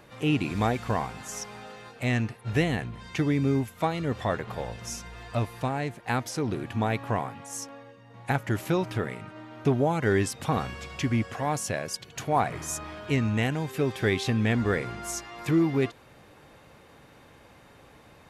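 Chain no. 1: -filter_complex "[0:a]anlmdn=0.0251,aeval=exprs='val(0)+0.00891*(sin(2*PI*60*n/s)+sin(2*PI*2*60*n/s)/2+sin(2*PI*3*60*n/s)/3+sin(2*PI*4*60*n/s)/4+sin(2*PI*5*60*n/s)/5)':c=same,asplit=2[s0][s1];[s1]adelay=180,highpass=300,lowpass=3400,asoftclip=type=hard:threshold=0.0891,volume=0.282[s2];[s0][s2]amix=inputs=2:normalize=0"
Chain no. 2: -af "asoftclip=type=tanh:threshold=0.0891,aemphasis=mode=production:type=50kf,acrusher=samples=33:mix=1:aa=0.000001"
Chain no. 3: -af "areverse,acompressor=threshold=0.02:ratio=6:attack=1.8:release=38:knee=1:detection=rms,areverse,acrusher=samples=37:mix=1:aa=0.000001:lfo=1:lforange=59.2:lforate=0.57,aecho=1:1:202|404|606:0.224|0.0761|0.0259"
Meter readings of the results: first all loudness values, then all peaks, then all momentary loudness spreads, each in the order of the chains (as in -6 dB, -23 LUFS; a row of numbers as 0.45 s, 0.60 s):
-28.5 LUFS, -30.5 LUFS, -39.0 LUFS; -11.0 dBFS, -17.0 dBFS, -26.0 dBFS; 19 LU, 8 LU, 15 LU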